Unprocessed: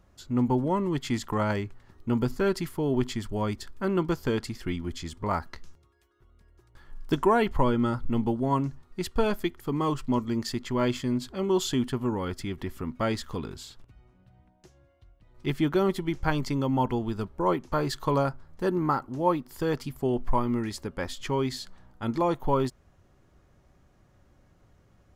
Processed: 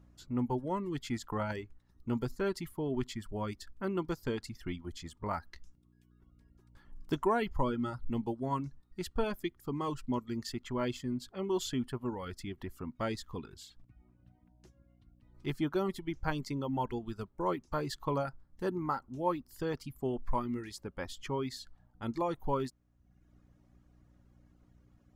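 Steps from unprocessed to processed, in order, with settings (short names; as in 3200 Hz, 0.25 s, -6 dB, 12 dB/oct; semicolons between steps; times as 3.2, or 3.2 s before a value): buzz 60 Hz, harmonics 5, -54 dBFS; reverb removal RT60 0.85 s; gain -7 dB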